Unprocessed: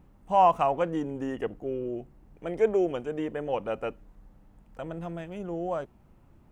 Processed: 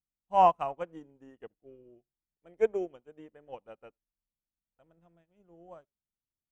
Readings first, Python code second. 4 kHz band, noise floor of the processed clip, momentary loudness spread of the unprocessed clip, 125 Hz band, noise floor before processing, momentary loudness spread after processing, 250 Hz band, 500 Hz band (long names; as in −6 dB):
can't be measured, below −85 dBFS, 16 LU, below −10 dB, −58 dBFS, 24 LU, −13.0 dB, −6.0 dB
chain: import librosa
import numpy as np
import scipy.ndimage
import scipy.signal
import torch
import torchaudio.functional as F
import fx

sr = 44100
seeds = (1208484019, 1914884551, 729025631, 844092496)

y = x + 10.0 ** (-22.5 / 20.0) * np.pad(x, (int(78 * sr / 1000.0), 0))[:len(x)]
y = fx.upward_expand(y, sr, threshold_db=-46.0, expansion=2.5)